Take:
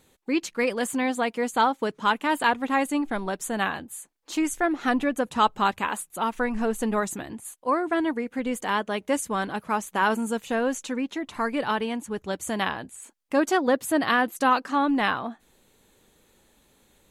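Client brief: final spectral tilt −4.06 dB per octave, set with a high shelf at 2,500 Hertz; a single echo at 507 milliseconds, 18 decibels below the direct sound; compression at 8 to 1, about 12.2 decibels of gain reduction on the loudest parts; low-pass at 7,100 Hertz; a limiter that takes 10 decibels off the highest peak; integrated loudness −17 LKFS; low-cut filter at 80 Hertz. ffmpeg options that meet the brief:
ffmpeg -i in.wav -af "highpass=80,lowpass=7100,highshelf=frequency=2500:gain=-3,acompressor=threshold=-29dB:ratio=8,alimiter=level_in=4.5dB:limit=-24dB:level=0:latency=1,volume=-4.5dB,aecho=1:1:507:0.126,volume=21.5dB" out.wav

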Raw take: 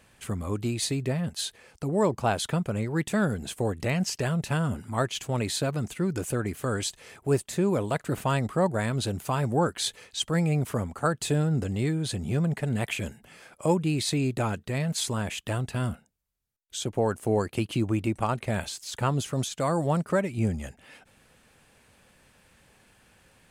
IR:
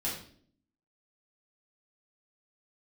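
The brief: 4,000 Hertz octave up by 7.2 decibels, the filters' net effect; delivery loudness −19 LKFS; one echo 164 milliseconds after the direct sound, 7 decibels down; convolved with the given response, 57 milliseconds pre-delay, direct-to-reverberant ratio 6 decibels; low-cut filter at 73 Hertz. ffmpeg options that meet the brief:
-filter_complex "[0:a]highpass=73,equalizer=frequency=4000:width_type=o:gain=8.5,aecho=1:1:164:0.447,asplit=2[link_01][link_02];[1:a]atrim=start_sample=2205,adelay=57[link_03];[link_02][link_03]afir=irnorm=-1:irlink=0,volume=-10.5dB[link_04];[link_01][link_04]amix=inputs=2:normalize=0,volume=6dB"

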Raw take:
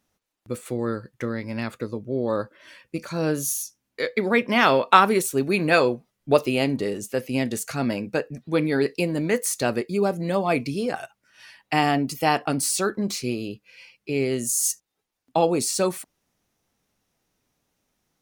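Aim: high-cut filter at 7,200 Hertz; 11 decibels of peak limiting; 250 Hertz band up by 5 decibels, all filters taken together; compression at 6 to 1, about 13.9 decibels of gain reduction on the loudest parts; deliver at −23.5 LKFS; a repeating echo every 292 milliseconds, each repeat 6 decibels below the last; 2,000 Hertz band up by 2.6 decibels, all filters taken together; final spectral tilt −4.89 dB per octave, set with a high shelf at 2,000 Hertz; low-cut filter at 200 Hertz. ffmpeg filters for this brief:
ffmpeg -i in.wav -af "highpass=200,lowpass=7200,equalizer=frequency=250:width_type=o:gain=8,highshelf=frequency=2000:gain=-7,equalizer=frequency=2000:width_type=o:gain=7.5,acompressor=threshold=-24dB:ratio=6,alimiter=limit=-21dB:level=0:latency=1,aecho=1:1:292|584|876|1168|1460|1752:0.501|0.251|0.125|0.0626|0.0313|0.0157,volume=7.5dB" out.wav

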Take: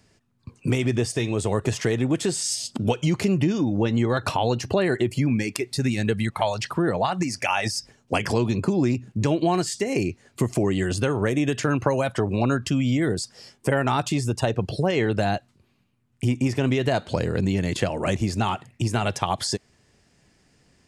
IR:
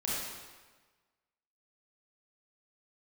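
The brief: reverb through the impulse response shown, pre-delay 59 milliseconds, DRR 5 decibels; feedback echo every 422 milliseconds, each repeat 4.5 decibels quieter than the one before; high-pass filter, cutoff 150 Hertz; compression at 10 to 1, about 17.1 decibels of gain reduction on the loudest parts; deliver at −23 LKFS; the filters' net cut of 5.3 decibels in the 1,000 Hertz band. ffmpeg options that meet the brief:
-filter_complex "[0:a]highpass=150,equalizer=frequency=1000:width_type=o:gain=-7.5,acompressor=threshold=-37dB:ratio=10,aecho=1:1:422|844|1266|1688|2110|2532|2954|3376|3798:0.596|0.357|0.214|0.129|0.0772|0.0463|0.0278|0.0167|0.01,asplit=2[link_01][link_02];[1:a]atrim=start_sample=2205,adelay=59[link_03];[link_02][link_03]afir=irnorm=-1:irlink=0,volume=-11dB[link_04];[link_01][link_04]amix=inputs=2:normalize=0,volume=15dB"

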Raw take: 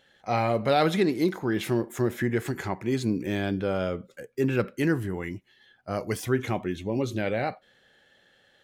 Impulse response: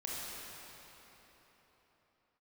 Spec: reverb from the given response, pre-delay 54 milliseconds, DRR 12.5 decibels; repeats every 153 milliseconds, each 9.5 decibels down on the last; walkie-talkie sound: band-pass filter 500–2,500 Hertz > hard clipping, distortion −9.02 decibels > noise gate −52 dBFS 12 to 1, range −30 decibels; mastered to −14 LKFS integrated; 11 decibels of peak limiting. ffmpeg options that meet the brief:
-filter_complex "[0:a]alimiter=limit=-22.5dB:level=0:latency=1,aecho=1:1:153|306|459|612:0.335|0.111|0.0365|0.012,asplit=2[link_01][link_02];[1:a]atrim=start_sample=2205,adelay=54[link_03];[link_02][link_03]afir=irnorm=-1:irlink=0,volume=-15dB[link_04];[link_01][link_04]amix=inputs=2:normalize=0,highpass=500,lowpass=2500,asoftclip=type=hard:threshold=-35.5dB,agate=range=-30dB:threshold=-52dB:ratio=12,volume=26.5dB"

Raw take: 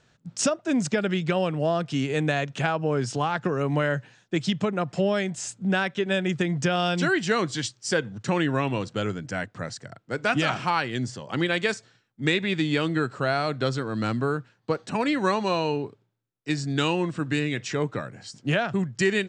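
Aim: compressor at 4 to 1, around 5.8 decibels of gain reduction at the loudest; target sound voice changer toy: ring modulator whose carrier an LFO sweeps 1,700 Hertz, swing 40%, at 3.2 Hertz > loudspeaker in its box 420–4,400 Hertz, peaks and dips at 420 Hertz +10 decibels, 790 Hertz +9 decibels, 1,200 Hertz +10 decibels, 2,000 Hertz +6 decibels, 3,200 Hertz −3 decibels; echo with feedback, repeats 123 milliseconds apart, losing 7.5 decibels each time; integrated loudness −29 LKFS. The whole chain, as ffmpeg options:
ffmpeg -i in.wav -af "acompressor=threshold=-26dB:ratio=4,aecho=1:1:123|246|369|492|615:0.422|0.177|0.0744|0.0312|0.0131,aeval=exprs='val(0)*sin(2*PI*1700*n/s+1700*0.4/3.2*sin(2*PI*3.2*n/s))':channel_layout=same,highpass=420,equalizer=frequency=420:width_type=q:width=4:gain=10,equalizer=frequency=790:width_type=q:width=4:gain=9,equalizer=frequency=1200:width_type=q:width=4:gain=10,equalizer=frequency=2000:width_type=q:width=4:gain=6,equalizer=frequency=3200:width_type=q:width=4:gain=-3,lowpass=frequency=4400:width=0.5412,lowpass=frequency=4400:width=1.3066,volume=-2.5dB" out.wav

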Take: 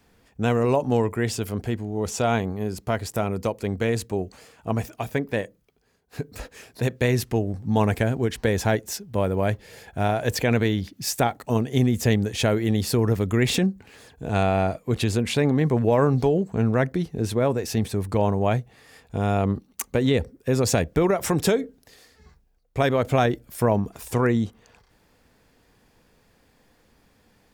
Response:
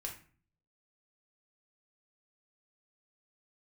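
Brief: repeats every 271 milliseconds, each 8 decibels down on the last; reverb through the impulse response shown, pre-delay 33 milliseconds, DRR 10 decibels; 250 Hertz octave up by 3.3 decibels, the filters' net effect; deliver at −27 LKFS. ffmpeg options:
-filter_complex "[0:a]equalizer=frequency=250:width_type=o:gain=4,aecho=1:1:271|542|813|1084|1355:0.398|0.159|0.0637|0.0255|0.0102,asplit=2[link_01][link_02];[1:a]atrim=start_sample=2205,adelay=33[link_03];[link_02][link_03]afir=irnorm=-1:irlink=0,volume=-9dB[link_04];[link_01][link_04]amix=inputs=2:normalize=0,volume=-5.5dB"

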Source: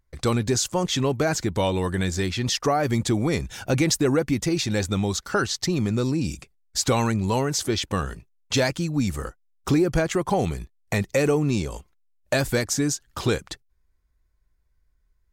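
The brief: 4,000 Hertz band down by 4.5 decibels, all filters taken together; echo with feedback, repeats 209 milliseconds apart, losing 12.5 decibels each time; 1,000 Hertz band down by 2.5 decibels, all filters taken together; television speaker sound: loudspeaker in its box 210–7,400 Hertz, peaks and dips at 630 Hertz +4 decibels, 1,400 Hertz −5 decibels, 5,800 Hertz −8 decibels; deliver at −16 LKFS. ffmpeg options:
ffmpeg -i in.wav -af "highpass=frequency=210:width=0.5412,highpass=frequency=210:width=1.3066,equalizer=frequency=630:width_type=q:width=4:gain=4,equalizer=frequency=1400:width_type=q:width=4:gain=-5,equalizer=frequency=5800:width_type=q:width=4:gain=-8,lowpass=frequency=7400:width=0.5412,lowpass=frequency=7400:width=1.3066,equalizer=frequency=1000:width_type=o:gain=-3.5,equalizer=frequency=4000:width_type=o:gain=-3.5,aecho=1:1:209|418|627:0.237|0.0569|0.0137,volume=10dB" out.wav

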